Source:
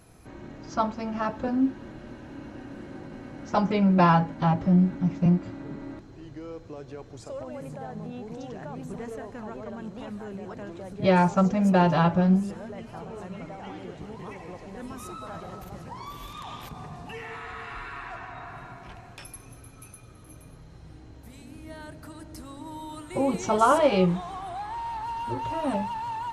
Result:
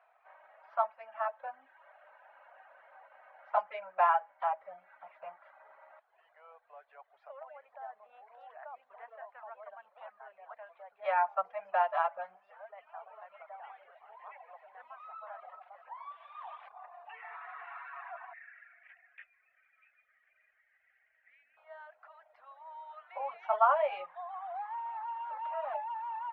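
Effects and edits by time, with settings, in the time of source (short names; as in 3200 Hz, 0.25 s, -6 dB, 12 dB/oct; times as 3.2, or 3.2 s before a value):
18.33–21.57 EQ curve 220 Hz 0 dB, 1000 Hz -26 dB, 1900 Hz +10 dB, 5700 Hz -23 dB
whole clip: Bessel low-pass 1600 Hz, order 6; reverb removal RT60 0.87 s; elliptic high-pass 650 Hz, stop band 50 dB; gain -2 dB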